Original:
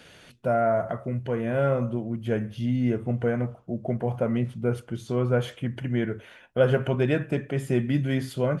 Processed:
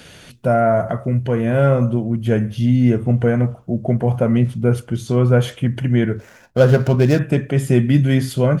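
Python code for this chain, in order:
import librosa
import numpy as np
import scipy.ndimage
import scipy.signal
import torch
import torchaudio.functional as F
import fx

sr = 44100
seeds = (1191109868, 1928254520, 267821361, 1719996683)

y = fx.median_filter(x, sr, points=15, at=(6.16, 7.19))
y = fx.bass_treble(y, sr, bass_db=5, treble_db=5)
y = y * 10.0 ** (7.0 / 20.0)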